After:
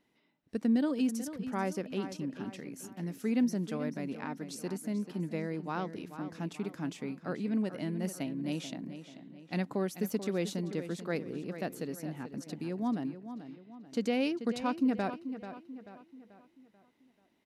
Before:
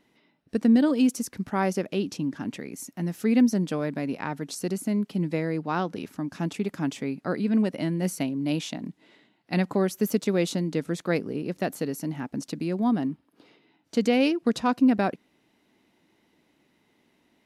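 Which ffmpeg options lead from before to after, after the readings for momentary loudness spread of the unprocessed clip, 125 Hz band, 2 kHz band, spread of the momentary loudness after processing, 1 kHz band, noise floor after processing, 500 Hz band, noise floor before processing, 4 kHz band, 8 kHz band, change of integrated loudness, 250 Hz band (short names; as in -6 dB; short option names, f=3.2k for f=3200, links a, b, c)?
11 LU, -8.0 dB, -8.0 dB, 14 LU, -8.0 dB, -71 dBFS, -8.0 dB, -68 dBFS, -8.5 dB, -8.5 dB, -8.5 dB, -8.0 dB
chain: -filter_complex "[0:a]asplit=2[a][b];[b]adelay=437,lowpass=f=4.8k:p=1,volume=-11dB,asplit=2[c][d];[d]adelay=437,lowpass=f=4.8k:p=1,volume=0.45,asplit=2[e][f];[f]adelay=437,lowpass=f=4.8k:p=1,volume=0.45,asplit=2[g][h];[h]adelay=437,lowpass=f=4.8k:p=1,volume=0.45,asplit=2[i][j];[j]adelay=437,lowpass=f=4.8k:p=1,volume=0.45[k];[a][c][e][g][i][k]amix=inputs=6:normalize=0,volume=-8.5dB"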